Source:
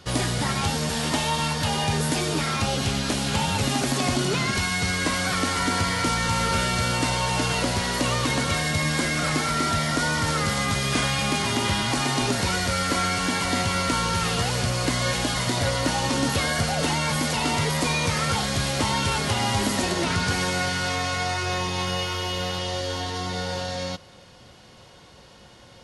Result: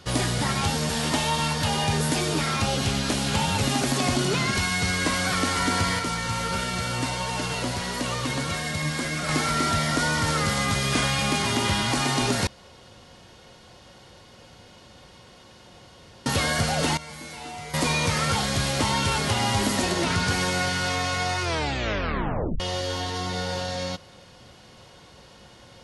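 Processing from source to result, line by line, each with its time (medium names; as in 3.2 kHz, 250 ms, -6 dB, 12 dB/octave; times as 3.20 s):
5.99–9.29 s: flange 1.5 Hz, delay 4 ms, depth 4.3 ms, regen +63%
12.47–16.26 s: room tone
16.97–17.74 s: feedback comb 66 Hz, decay 0.86 s, harmonics odd, mix 90%
21.42 s: tape stop 1.18 s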